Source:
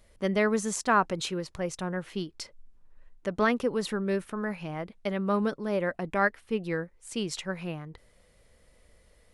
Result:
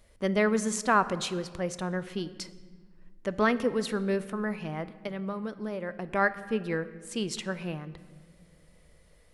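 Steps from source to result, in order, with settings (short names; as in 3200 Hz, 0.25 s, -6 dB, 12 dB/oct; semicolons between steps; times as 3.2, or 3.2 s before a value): 4.92–6.1 compressor 6:1, threshold -32 dBFS, peak gain reduction 10 dB; on a send: reverb RT60 1.7 s, pre-delay 18 ms, DRR 14 dB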